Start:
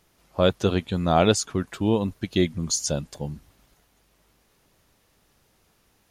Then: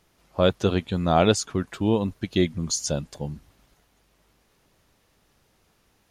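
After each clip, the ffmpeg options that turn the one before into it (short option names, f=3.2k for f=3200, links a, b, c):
-af "highshelf=f=8.7k:g=-5"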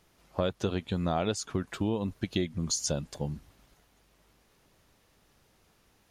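-af "acompressor=threshold=-25dB:ratio=5,volume=-1dB"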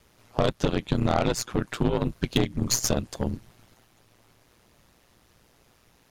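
-af "aeval=exprs='val(0)*sin(2*PI*60*n/s)':c=same,aeval=exprs='0.178*(cos(1*acos(clip(val(0)/0.178,-1,1)))-cos(1*PI/2))+0.0178*(cos(8*acos(clip(val(0)/0.178,-1,1)))-cos(8*PI/2))':c=same,volume=8dB"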